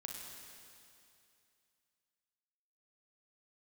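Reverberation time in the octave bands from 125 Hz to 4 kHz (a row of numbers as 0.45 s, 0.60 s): 2.6 s, 2.6 s, 2.6 s, 2.6 s, 2.6 s, 2.6 s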